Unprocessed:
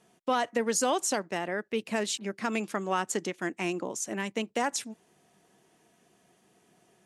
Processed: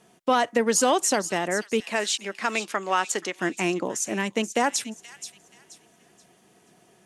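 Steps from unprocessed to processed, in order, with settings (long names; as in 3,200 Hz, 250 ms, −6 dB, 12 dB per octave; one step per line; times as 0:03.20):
0:01.80–0:03.36: meter weighting curve A
delay with a high-pass on its return 479 ms, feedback 30%, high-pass 2,700 Hz, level −10.5 dB
level +6 dB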